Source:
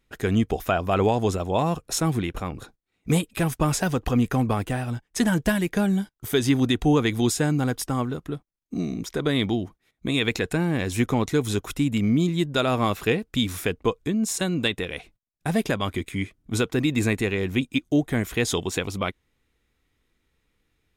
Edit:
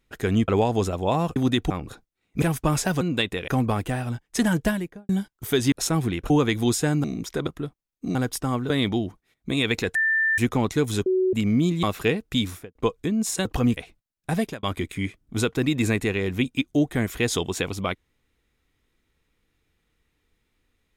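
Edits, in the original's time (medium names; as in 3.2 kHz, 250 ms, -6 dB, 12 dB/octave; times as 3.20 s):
0.48–0.95 s: delete
1.83–2.41 s: swap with 6.53–6.87 s
3.13–3.38 s: delete
3.97–4.29 s: swap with 14.47–14.94 s
5.40–5.90 s: studio fade out
7.61–8.16 s: swap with 8.84–9.27 s
10.52–10.95 s: bleep 1.78 kHz -18.5 dBFS
11.63–11.90 s: bleep 373 Hz -18 dBFS
12.40–12.85 s: delete
13.44–13.77 s: studio fade out
15.53–15.80 s: fade out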